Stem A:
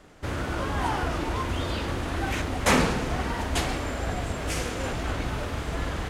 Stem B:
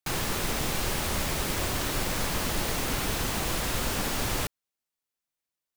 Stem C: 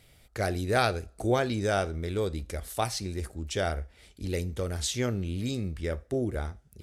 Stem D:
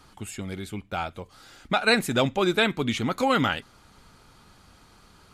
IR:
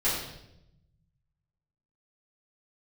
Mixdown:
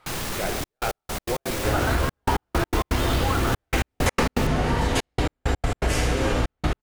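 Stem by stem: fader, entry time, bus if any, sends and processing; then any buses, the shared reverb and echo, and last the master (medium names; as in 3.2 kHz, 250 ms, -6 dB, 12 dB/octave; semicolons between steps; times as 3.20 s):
0.0 dB, 1.40 s, send -3.5 dB, none
+2.5 dB, 0.00 s, no send, saturation -26 dBFS, distortion -14 dB
0.0 dB, 0.00 s, send -13.5 dB, saturation -17.5 dBFS, distortion -20 dB; tone controls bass -14 dB, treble -13 dB
-17.5 dB, 0.00 s, send -12.5 dB, high-order bell 1 kHz +14.5 dB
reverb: on, RT60 0.85 s, pre-delay 4 ms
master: trance gate "xxxxxxx..x..x.x." 165 bpm -60 dB; compression, threshold -18 dBFS, peak gain reduction 9 dB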